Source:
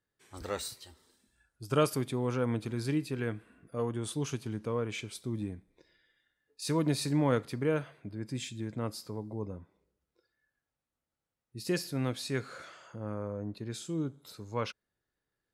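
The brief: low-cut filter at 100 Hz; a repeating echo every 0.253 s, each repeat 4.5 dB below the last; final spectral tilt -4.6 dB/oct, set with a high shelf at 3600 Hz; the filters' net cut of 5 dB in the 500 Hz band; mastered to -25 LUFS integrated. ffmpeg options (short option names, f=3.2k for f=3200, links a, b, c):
-af "highpass=100,equalizer=f=500:t=o:g=-6,highshelf=f=3.6k:g=4.5,aecho=1:1:253|506|759|1012|1265|1518|1771|2024|2277:0.596|0.357|0.214|0.129|0.0772|0.0463|0.0278|0.0167|0.01,volume=9.5dB"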